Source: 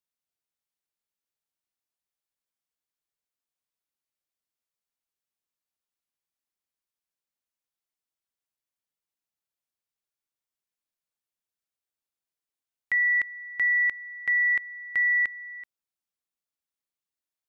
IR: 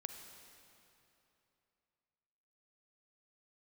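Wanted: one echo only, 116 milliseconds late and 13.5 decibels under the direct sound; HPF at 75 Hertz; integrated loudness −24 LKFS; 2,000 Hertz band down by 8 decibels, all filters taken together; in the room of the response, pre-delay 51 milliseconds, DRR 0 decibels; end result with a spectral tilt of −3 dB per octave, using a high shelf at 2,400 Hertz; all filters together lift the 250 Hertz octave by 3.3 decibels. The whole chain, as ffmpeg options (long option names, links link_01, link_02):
-filter_complex "[0:a]highpass=75,equalizer=frequency=250:width_type=o:gain=4.5,equalizer=frequency=2000:width_type=o:gain=-6.5,highshelf=frequency=2400:gain=-4,aecho=1:1:116:0.211,asplit=2[link_01][link_02];[1:a]atrim=start_sample=2205,adelay=51[link_03];[link_02][link_03]afir=irnorm=-1:irlink=0,volume=2.5dB[link_04];[link_01][link_04]amix=inputs=2:normalize=0,volume=9.5dB"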